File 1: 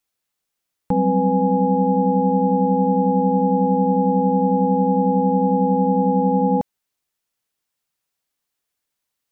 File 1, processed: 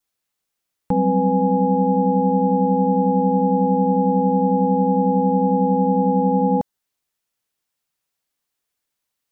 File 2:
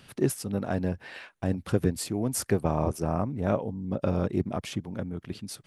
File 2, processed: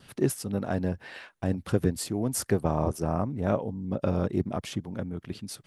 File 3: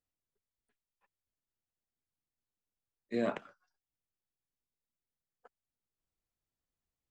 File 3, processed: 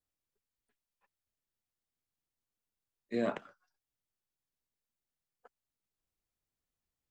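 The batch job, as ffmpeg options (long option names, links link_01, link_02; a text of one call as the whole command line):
ffmpeg -i in.wav -af "adynamicequalizer=threshold=0.00112:dfrequency=2400:dqfactor=5.4:tfrequency=2400:tqfactor=5.4:attack=5:release=100:ratio=0.375:range=4:mode=cutabove:tftype=bell" out.wav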